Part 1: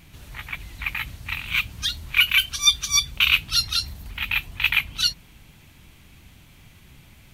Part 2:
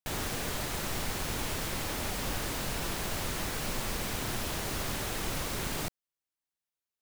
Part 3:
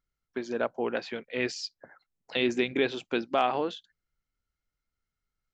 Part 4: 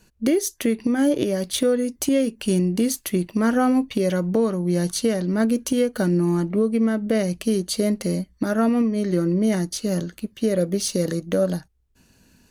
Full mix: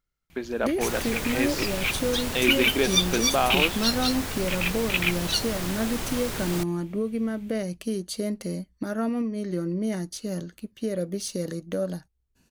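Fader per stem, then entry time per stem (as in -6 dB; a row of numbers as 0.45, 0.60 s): -5.0, +2.0, +2.0, -7.5 dB; 0.30, 0.75, 0.00, 0.40 s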